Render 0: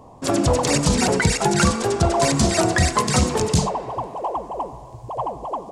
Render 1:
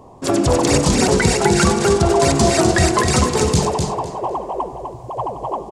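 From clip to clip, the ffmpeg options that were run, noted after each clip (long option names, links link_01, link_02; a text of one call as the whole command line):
ffmpeg -i in.wav -filter_complex "[0:a]equalizer=frequency=380:width_type=o:width=0.24:gain=7.5,asplit=2[link_01][link_02];[link_02]aecho=0:1:252|504|756:0.562|0.129|0.0297[link_03];[link_01][link_03]amix=inputs=2:normalize=0,volume=1.5dB" out.wav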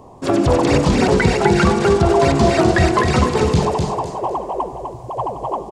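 ffmpeg -i in.wav -filter_complex "[0:a]acrossover=split=4100[link_01][link_02];[link_02]acompressor=threshold=-39dB:ratio=4:attack=1:release=60[link_03];[link_01][link_03]amix=inputs=2:normalize=0,volume=1dB" out.wav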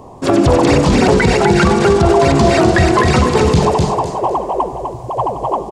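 ffmpeg -i in.wav -af "alimiter=level_in=6.5dB:limit=-1dB:release=50:level=0:latency=1,volume=-1dB" out.wav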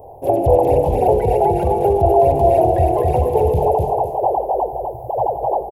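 ffmpeg -i in.wav -af "firequalizer=gain_entry='entry(100,0);entry(210,-17);entry(460,4);entry(810,6);entry(1200,-30);entry(2600,-15);entry(4300,-28);entry(8100,-22);entry(12000,13)':delay=0.05:min_phase=1,volume=-3.5dB" out.wav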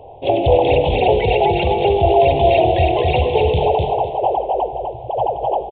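ffmpeg -i in.wav -af "aexciter=amount=10.1:drive=8.8:freq=2400,aresample=8000,aresample=44100" out.wav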